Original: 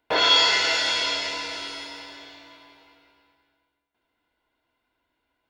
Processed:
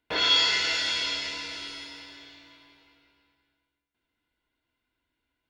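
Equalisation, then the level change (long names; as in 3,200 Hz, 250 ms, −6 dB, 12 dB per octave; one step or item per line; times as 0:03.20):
parametric band 730 Hz −11 dB 2 octaves
high-shelf EQ 4,700 Hz −6 dB
0.0 dB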